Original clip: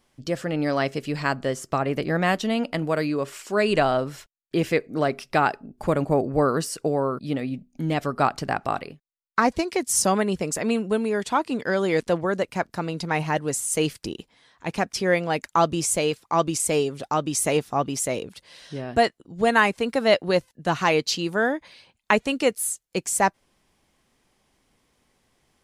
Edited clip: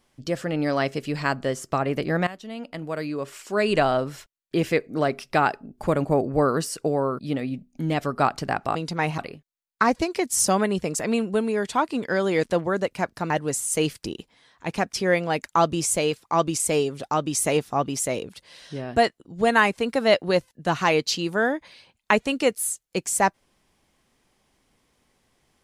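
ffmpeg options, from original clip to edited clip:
-filter_complex "[0:a]asplit=5[a][b][c][d][e];[a]atrim=end=2.27,asetpts=PTS-STARTPTS,afade=t=out:st=2.266:d=0.004:c=hsin:silence=0.11885[f];[b]atrim=start=2.27:end=8.752,asetpts=PTS-STARTPTS,afade=t=in:d=1.52:silence=0.11885[g];[c]atrim=start=12.868:end=13.302[h];[d]atrim=start=8.748:end=12.872[i];[e]atrim=start=13.298[j];[f][g]concat=n=2:v=0:a=1[k];[k][h]acrossfade=d=0.004:c1=hsin:c2=hsin[l];[l][i]acrossfade=d=0.004:c1=hsin:c2=hsin[m];[m][j]acrossfade=d=0.004:c1=hsin:c2=hsin"

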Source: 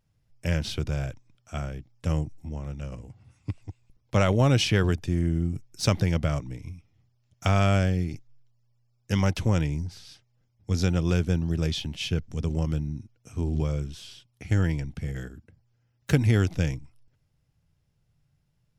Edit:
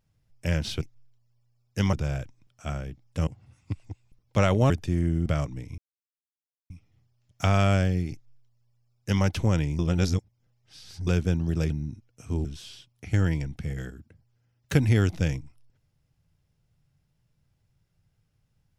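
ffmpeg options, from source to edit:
-filter_complex "[0:a]asplit=11[a][b][c][d][e][f][g][h][i][j][k];[a]atrim=end=0.812[l];[b]atrim=start=8.138:end=9.262[m];[c]atrim=start=0.808:end=2.152[n];[d]atrim=start=3.048:end=4.482[o];[e]atrim=start=4.898:end=5.462[p];[f]atrim=start=6.198:end=6.72,asetpts=PTS-STARTPTS,afade=t=out:st=0.518:d=0.004:c=hsin,apad=pad_dur=0.92[q];[g]atrim=start=6.72:end=9.812,asetpts=PTS-STARTPTS,afade=t=in:d=0.004:c=hsin[r];[h]atrim=start=9.808:end=11.092,asetpts=PTS-STARTPTS,areverse[s];[i]atrim=start=11.088:end=11.722[t];[j]atrim=start=12.768:end=13.522[u];[k]atrim=start=13.828[v];[l][m]acrossfade=d=0.004:c1=hsin:c2=hsin[w];[w][n]acrossfade=d=0.004:c1=hsin:c2=hsin[x];[x][o]acrossfade=d=0.004:c1=hsin:c2=hsin[y];[y][p]acrossfade=d=0.004:c1=hsin:c2=hsin[z];[q][r]concat=n=2:v=0:a=1[aa];[z][aa]acrossfade=d=0.004:c1=hsin:c2=hsin[ab];[ab][s]acrossfade=d=0.004:c1=hsin:c2=hsin[ac];[ac][t]acrossfade=d=0.004:c1=hsin:c2=hsin[ad];[ad][u]acrossfade=d=0.004:c1=hsin:c2=hsin[ae];[ae][v]acrossfade=d=0.004:c1=hsin:c2=hsin"

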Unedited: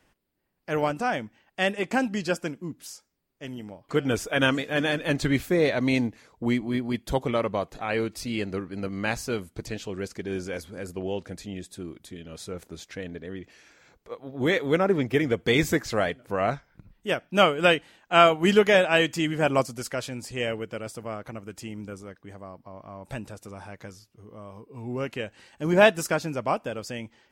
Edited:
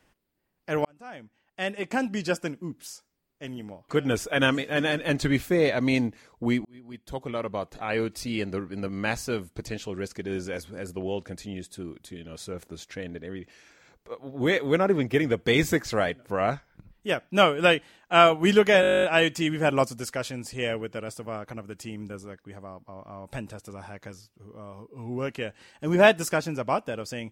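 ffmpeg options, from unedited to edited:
-filter_complex "[0:a]asplit=14[a][b][c][d][e][f][g][h][i][j][k][l][m][n];[a]atrim=end=0.85,asetpts=PTS-STARTPTS,afade=t=out:st=0.846:d=0.004:c=hsin[o];[b]atrim=start=0.85:end=6.65,asetpts=PTS-STARTPTS,afade=t=in:d=1.44,afade=t=out:st=5.796:d=0.004:c=hsin[p];[c]atrim=start=6.65:end=18.832,asetpts=PTS-STARTPTS,afade=t=in:d=1.35[q];[d]atrim=start=18.808:end=18.832[r];[e]atrim=start=18.808:end=18.832[s];[f]atrim=start=18.808:end=18.832[t];[g]atrim=start=18.808:end=18.832[u];[h]atrim=start=18.808:end=18.832[v];[i]atrim=start=18.808:end=18.832[w];[j]atrim=start=18.808:end=18.832[x];[k]atrim=start=18.808:end=18.832[y];[l]atrim=start=18.808:end=18.832[z];[m]atrim=start=18.808:end=18.832[aa];[n]atrim=start=18.808[ab];[o][p][q]concat=n=3:v=0:a=1[ac];[ac][r]acrossfade=d=0.004:c1=hsin:c2=hsin[ad];[ad][s]acrossfade=d=0.004:c1=hsin:c2=hsin[ae];[ae][t]acrossfade=d=0.004:c1=hsin:c2=hsin[af];[af][u]acrossfade=d=0.004:c1=hsin:c2=hsin[ag];[ag][v]acrossfade=d=0.004:c1=hsin:c2=hsin[ah];[ah][w]acrossfade=d=0.004:c1=hsin:c2=hsin[ai];[ai][x]acrossfade=d=0.004:c1=hsin:c2=hsin[aj];[aj][y]acrossfade=d=0.004:c1=hsin:c2=hsin[ak];[ak][z]acrossfade=d=0.004:c1=hsin:c2=hsin[al];[al][aa]acrossfade=d=0.004:c1=hsin:c2=hsin[am];[am][ab]acrossfade=d=0.004:c1=hsin:c2=hsin"

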